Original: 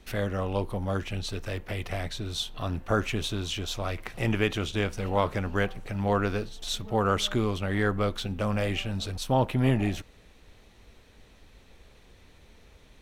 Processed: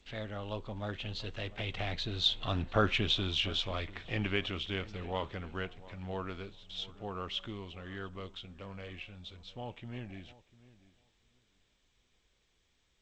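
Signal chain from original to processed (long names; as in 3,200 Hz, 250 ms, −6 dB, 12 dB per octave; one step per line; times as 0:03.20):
source passing by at 0:02.65, 25 m/s, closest 24 metres
low-pass with resonance 3,500 Hz, resonance Q 2.6
on a send: feedback echo with a low-pass in the loop 697 ms, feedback 17%, low-pass 1,700 Hz, level −18.5 dB
on the sum: level −2.5 dB
G.722 64 kbit/s 16,000 Hz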